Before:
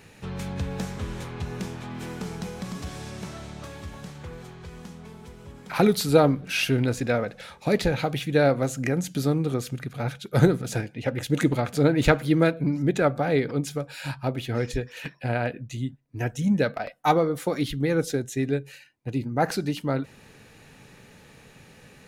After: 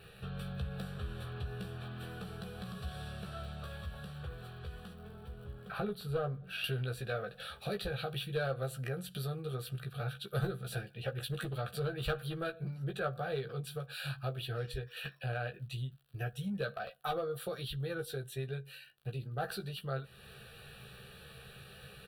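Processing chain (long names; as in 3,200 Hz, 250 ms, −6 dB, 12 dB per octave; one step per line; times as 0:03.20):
high-shelf EQ 2,100 Hz −2 dB, from 0:04.93 −10.5 dB, from 0:06.64 +3.5 dB
surface crackle 71 per second −47 dBFS
asymmetric clip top −14 dBFS
parametric band 580 Hz −6 dB 0.34 octaves
notch filter 5,100 Hz, Q 6.4
downward compressor 2 to 1, threshold −40 dBFS, peak gain reduction 14 dB
phaser with its sweep stopped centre 1,400 Hz, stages 8
double-tracking delay 15 ms −5 dB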